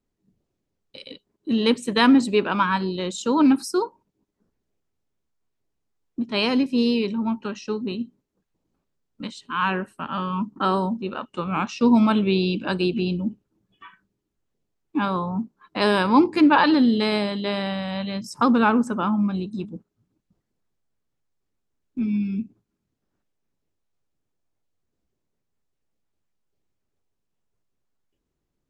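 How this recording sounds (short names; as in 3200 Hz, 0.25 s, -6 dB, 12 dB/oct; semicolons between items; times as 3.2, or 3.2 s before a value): noise floor -79 dBFS; spectral tilt -4.0 dB/oct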